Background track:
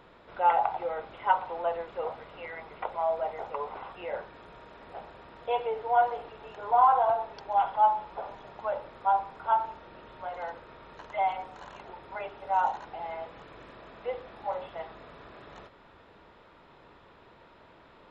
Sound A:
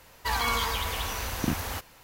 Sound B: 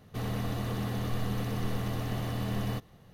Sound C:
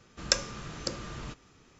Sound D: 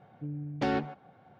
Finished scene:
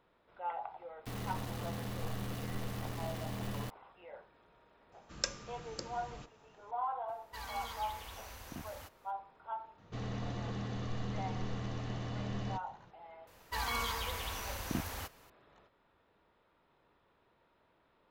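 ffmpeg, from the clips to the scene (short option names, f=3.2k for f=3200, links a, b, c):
-filter_complex "[2:a]asplit=2[a][b];[1:a]asplit=2[c][d];[0:a]volume=-16dB[e];[a]aeval=exprs='val(0)*gte(abs(val(0)),0.0188)':c=same[f];[c]volume=20dB,asoftclip=hard,volume=-20dB[g];[b]aresample=16000,aresample=44100[h];[f]atrim=end=3.13,asetpts=PTS-STARTPTS,volume=-7.5dB,afade=t=in:d=0.004:c=hsin,afade=t=out:st=3.126:d=0.004:c=hsin,adelay=910[i];[3:a]atrim=end=1.79,asetpts=PTS-STARTPTS,volume=-9.5dB,afade=t=in:d=0.004:c=hsin,afade=t=out:st=1.786:d=0.004:c=hsin,adelay=4920[j];[g]atrim=end=2.03,asetpts=PTS-STARTPTS,volume=-17dB,afade=t=in:d=0.004:c=hsin,afade=t=out:st=2.026:d=0.004:c=hsin,adelay=7080[k];[h]atrim=end=3.13,asetpts=PTS-STARTPTS,volume=-6.5dB,afade=t=in:d=0.004:c=hsin,afade=t=out:st=3.126:d=0.004:c=hsin,adelay=431298S[l];[d]atrim=end=2.03,asetpts=PTS-STARTPTS,volume=-8.5dB,afade=t=in:d=0.004:c=hsin,afade=t=out:st=2.026:d=0.004:c=hsin,adelay=13270[m];[e][i][j][k][l][m]amix=inputs=6:normalize=0"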